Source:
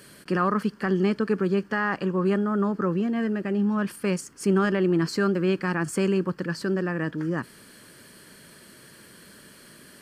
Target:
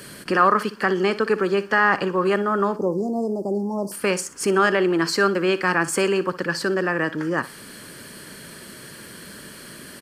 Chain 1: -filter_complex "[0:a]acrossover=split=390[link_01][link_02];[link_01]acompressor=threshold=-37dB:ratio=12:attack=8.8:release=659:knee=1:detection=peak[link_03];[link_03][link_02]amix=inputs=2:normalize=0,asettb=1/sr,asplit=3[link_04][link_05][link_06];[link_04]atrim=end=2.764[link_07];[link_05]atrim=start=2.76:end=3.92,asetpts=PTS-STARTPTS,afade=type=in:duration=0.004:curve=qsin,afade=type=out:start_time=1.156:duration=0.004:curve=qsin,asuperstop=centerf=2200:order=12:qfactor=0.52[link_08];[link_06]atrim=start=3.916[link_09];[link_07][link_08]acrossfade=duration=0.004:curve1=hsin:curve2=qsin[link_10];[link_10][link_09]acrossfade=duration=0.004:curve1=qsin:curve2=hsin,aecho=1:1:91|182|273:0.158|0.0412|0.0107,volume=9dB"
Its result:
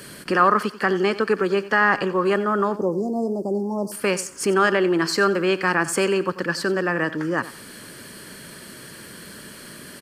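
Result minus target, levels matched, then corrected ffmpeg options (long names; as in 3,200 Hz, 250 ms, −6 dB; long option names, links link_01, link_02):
echo 31 ms late
-filter_complex "[0:a]acrossover=split=390[link_01][link_02];[link_01]acompressor=threshold=-37dB:ratio=12:attack=8.8:release=659:knee=1:detection=peak[link_03];[link_03][link_02]amix=inputs=2:normalize=0,asettb=1/sr,asplit=3[link_04][link_05][link_06];[link_04]atrim=end=2.764[link_07];[link_05]atrim=start=2.76:end=3.92,asetpts=PTS-STARTPTS,afade=type=in:duration=0.004:curve=qsin,afade=type=out:start_time=1.156:duration=0.004:curve=qsin,asuperstop=centerf=2200:order=12:qfactor=0.52[link_08];[link_06]atrim=start=3.916[link_09];[link_07][link_08]acrossfade=duration=0.004:curve1=hsin:curve2=qsin[link_10];[link_10][link_09]acrossfade=duration=0.004:curve1=qsin:curve2=hsin,aecho=1:1:60|120|180:0.158|0.0412|0.0107,volume=9dB"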